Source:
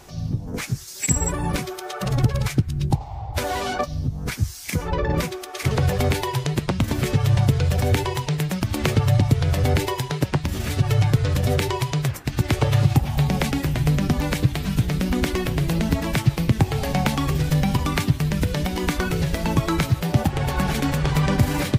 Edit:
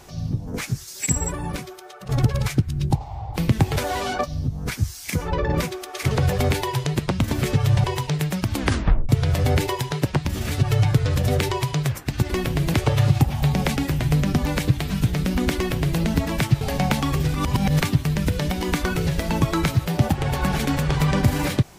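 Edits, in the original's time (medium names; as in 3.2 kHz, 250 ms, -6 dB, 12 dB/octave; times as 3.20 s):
0.89–2.09 s: fade out, to -14.5 dB
7.44–8.03 s: delete
8.74 s: tape stop 0.54 s
15.31–15.75 s: copy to 12.49 s
16.36–16.76 s: move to 3.36 s
17.49–17.97 s: reverse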